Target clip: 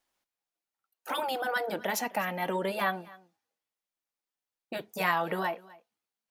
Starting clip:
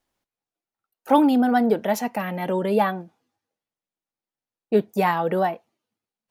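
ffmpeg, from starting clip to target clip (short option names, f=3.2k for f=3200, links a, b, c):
-filter_complex "[0:a]afftfilt=real='re*lt(hypot(re,im),0.631)':imag='im*lt(hypot(re,im),0.631)':win_size=1024:overlap=0.75,lowshelf=f=440:g=-11.5,asplit=2[a][b];[b]aecho=0:1:255:0.0794[c];[a][c]amix=inputs=2:normalize=0"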